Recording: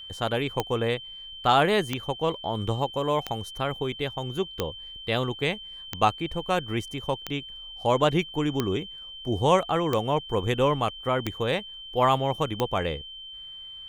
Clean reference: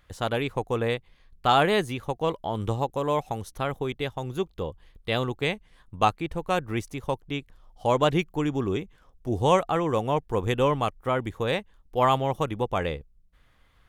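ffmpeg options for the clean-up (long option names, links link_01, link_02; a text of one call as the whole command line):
ffmpeg -i in.wav -af "adeclick=threshold=4,bandreject=frequency=3100:width=30" out.wav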